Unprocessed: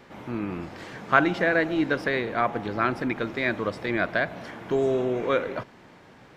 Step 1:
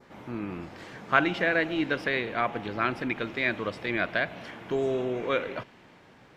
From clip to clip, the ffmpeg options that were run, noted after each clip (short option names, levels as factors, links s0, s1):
-af "adynamicequalizer=threshold=0.00631:dfrequency=2800:dqfactor=1.5:tfrequency=2800:tqfactor=1.5:attack=5:release=100:ratio=0.375:range=4:mode=boostabove:tftype=bell,volume=0.631"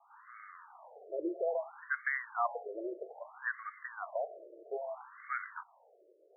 -af "afftfilt=real='re*between(b*sr/1024,450*pow(1600/450,0.5+0.5*sin(2*PI*0.61*pts/sr))/1.41,450*pow(1600/450,0.5+0.5*sin(2*PI*0.61*pts/sr))*1.41)':imag='im*between(b*sr/1024,450*pow(1600/450,0.5+0.5*sin(2*PI*0.61*pts/sr))/1.41,450*pow(1600/450,0.5+0.5*sin(2*PI*0.61*pts/sr))*1.41)':win_size=1024:overlap=0.75,volume=0.708"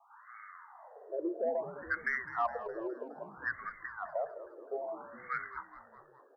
-filter_complex "[0:a]aeval=exprs='0.1*(cos(1*acos(clip(val(0)/0.1,-1,1)))-cos(1*PI/2))+0.00251*(cos(5*acos(clip(val(0)/0.1,-1,1)))-cos(5*PI/2))':c=same,asplit=7[s0][s1][s2][s3][s4][s5][s6];[s1]adelay=207,afreqshift=-88,volume=0.2[s7];[s2]adelay=414,afreqshift=-176,volume=0.12[s8];[s3]adelay=621,afreqshift=-264,volume=0.0716[s9];[s4]adelay=828,afreqshift=-352,volume=0.0432[s10];[s5]adelay=1035,afreqshift=-440,volume=0.026[s11];[s6]adelay=1242,afreqshift=-528,volume=0.0155[s12];[s0][s7][s8][s9][s10][s11][s12]amix=inputs=7:normalize=0"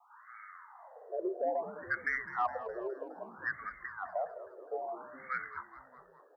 -af "afreqshift=29"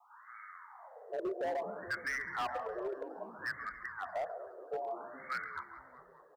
-filter_complex "[0:a]aecho=1:1:139|278|417|556:0.211|0.0867|0.0355|0.0146,acrossover=split=160[s0][s1];[s1]asoftclip=type=hard:threshold=0.0251[s2];[s0][s2]amix=inputs=2:normalize=0"